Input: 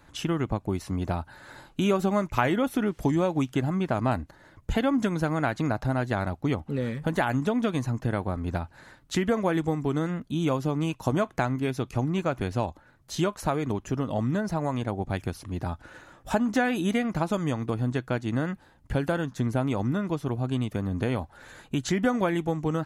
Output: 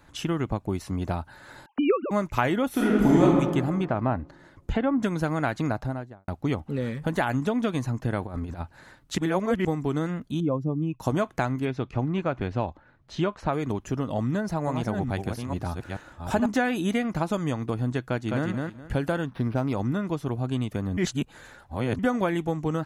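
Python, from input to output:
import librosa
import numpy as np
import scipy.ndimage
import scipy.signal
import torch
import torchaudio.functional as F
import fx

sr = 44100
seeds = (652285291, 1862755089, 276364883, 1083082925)

y = fx.sine_speech(x, sr, at=(1.66, 2.11))
y = fx.reverb_throw(y, sr, start_s=2.7, length_s=0.53, rt60_s=1.7, drr_db=-6.0)
y = fx.env_lowpass_down(y, sr, base_hz=1600.0, full_db=-20.0, at=(3.84, 5.02), fade=0.02)
y = fx.studio_fade_out(y, sr, start_s=5.66, length_s=0.62)
y = fx.over_compress(y, sr, threshold_db=-32.0, ratio=-0.5, at=(8.22, 8.62))
y = fx.spec_expand(y, sr, power=1.8, at=(10.4, 11.0))
y = fx.lowpass(y, sr, hz=3400.0, slope=12, at=(11.65, 13.53))
y = fx.reverse_delay(y, sr, ms=432, wet_db=-5, at=(14.24, 16.46))
y = fx.echo_throw(y, sr, start_s=18.06, length_s=0.42, ms=210, feedback_pct=20, wet_db=-3.0)
y = fx.resample_linear(y, sr, factor=6, at=(19.26, 19.73))
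y = fx.edit(y, sr, fx.reverse_span(start_s=9.18, length_s=0.47),
    fx.reverse_span(start_s=20.97, length_s=1.02), tone=tone)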